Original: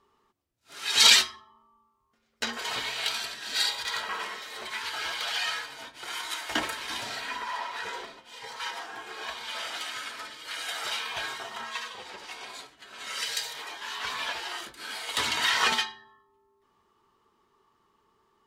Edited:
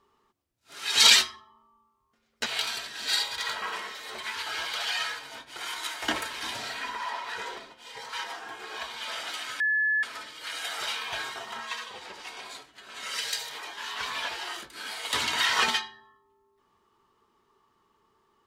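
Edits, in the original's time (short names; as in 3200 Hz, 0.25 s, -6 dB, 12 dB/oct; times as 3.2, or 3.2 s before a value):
2.46–2.93 cut
10.07 add tone 1720 Hz -22 dBFS 0.43 s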